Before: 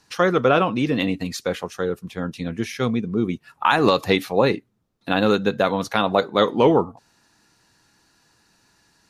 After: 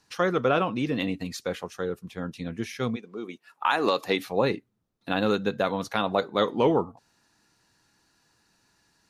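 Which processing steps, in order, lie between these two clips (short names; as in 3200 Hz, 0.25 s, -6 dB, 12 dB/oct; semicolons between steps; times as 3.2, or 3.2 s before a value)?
2.95–4.18 HPF 560 Hz -> 220 Hz 12 dB/oct; gain -6 dB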